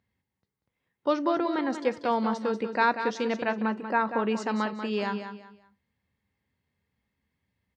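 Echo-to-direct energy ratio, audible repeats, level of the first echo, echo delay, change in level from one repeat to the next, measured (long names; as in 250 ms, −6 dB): −8.5 dB, 3, −9.0 dB, 189 ms, −11.0 dB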